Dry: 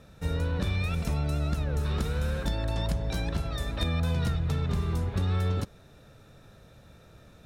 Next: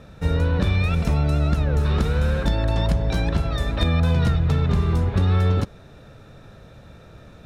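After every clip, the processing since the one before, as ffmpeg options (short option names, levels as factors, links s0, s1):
-af "lowpass=f=3600:p=1,volume=2.66"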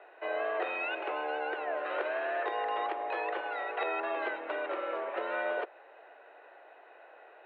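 -af "highpass=f=300:t=q:w=0.5412,highpass=f=300:t=q:w=1.307,lowpass=f=2700:t=q:w=0.5176,lowpass=f=2700:t=q:w=0.7071,lowpass=f=2700:t=q:w=1.932,afreqshift=160,volume=0.668"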